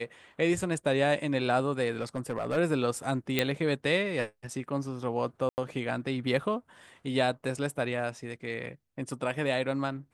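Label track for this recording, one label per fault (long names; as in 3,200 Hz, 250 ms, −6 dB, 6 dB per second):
1.990000	2.580000	clipping −25.5 dBFS
3.390000	3.390000	click −10 dBFS
5.490000	5.580000	drop-out 89 ms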